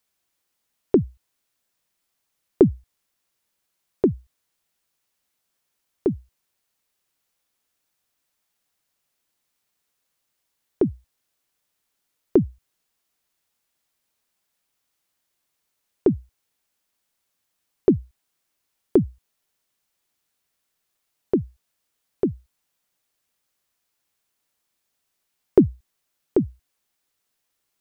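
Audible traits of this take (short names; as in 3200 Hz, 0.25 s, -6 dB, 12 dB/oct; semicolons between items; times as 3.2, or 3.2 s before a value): noise floor -77 dBFS; spectral tilt -7.5 dB/oct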